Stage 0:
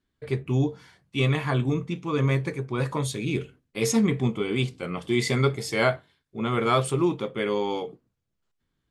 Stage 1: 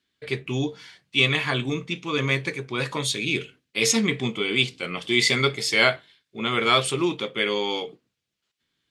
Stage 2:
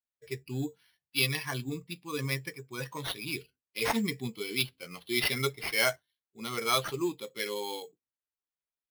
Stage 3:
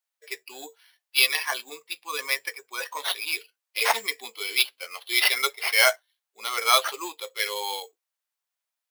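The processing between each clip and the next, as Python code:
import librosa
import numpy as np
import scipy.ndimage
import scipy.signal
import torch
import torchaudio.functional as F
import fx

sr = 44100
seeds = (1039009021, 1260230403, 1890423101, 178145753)

y1 = fx.weighting(x, sr, curve='D')
y2 = fx.bin_expand(y1, sr, power=1.5)
y2 = fx.sample_hold(y2, sr, seeds[0], rate_hz=7400.0, jitter_pct=0)
y2 = y2 * librosa.db_to_amplitude(-6.0)
y3 = scipy.signal.sosfilt(scipy.signal.butter(4, 580.0, 'highpass', fs=sr, output='sos'), y2)
y3 = y3 * librosa.db_to_amplitude(8.5)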